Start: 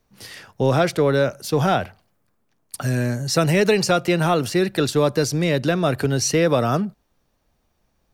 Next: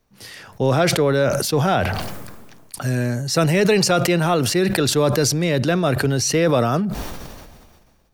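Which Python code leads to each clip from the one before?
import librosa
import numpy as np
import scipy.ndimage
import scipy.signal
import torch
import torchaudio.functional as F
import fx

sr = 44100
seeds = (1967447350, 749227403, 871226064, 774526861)

y = fx.sustainer(x, sr, db_per_s=33.0)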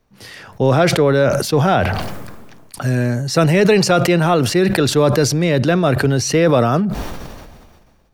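y = fx.high_shelf(x, sr, hz=4500.0, db=-7.0)
y = y * librosa.db_to_amplitude(4.0)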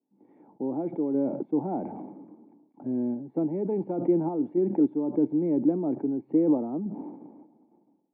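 y = scipy.signal.sosfilt(scipy.signal.butter(4, 190.0, 'highpass', fs=sr, output='sos'), x)
y = fx.tremolo_random(y, sr, seeds[0], hz=3.5, depth_pct=55)
y = fx.formant_cascade(y, sr, vowel='u')
y = y * librosa.db_to_amplitude(1.0)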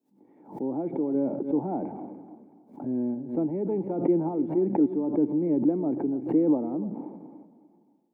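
y = fx.echo_feedback(x, sr, ms=293, feedback_pct=31, wet_db=-15)
y = fx.pre_swell(y, sr, db_per_s=140.0)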